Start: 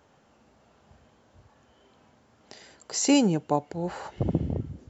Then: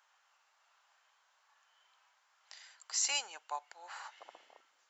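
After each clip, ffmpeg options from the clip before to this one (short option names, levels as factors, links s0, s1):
-af "highpass=f=1000:w=0.5412,highpass=f=1000:w=1.3066,volume=0.631"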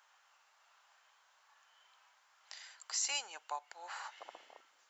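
-af "acompressor=threshold=0.00501:ratio=1.5,volume=1.41"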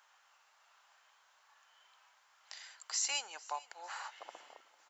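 -af "aecho=1:1:450|900|1350:0.0841|0.0395|0.0186,volume=1.12"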